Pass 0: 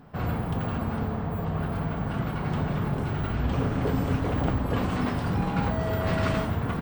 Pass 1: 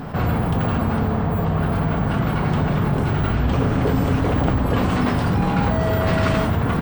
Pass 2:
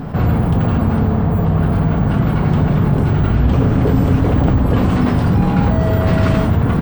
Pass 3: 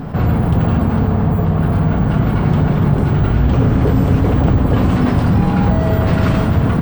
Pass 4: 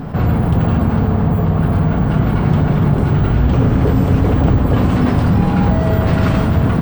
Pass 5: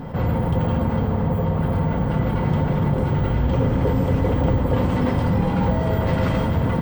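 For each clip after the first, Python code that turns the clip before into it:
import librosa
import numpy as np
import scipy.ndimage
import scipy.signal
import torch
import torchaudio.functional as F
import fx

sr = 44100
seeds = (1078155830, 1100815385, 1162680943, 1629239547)

y1 = fx.env_flatten(x, sr, amount_pct=50)
y1 = y1 * 10.0 ** (5.5 / 20.0)
y2 = fx.low_shelf(y1, sr, hz=480.0, db=8.0)
y2 = y2 * 10.0 ** (-1.0 / 20.0)
y3 = y2 + 10.0 ** (-10.0 / 20.0) * np.pad(y2, (int(290 * sr / 1000.0), 0))[:len(y2)]
y4 = y3 + 10.0 ** (-15.0 / 20.0) * np.pad(y3, (int(664 * sr / 1000.0), 0))[:len(y3)]
y5 = fx.small_body(y4, sr, hz=(520.0, 910.0, 2000.0, 3200.0), ring_ms=95, db=13)
y5 = y5 * 10.0 ** (-7.0 / 20.0)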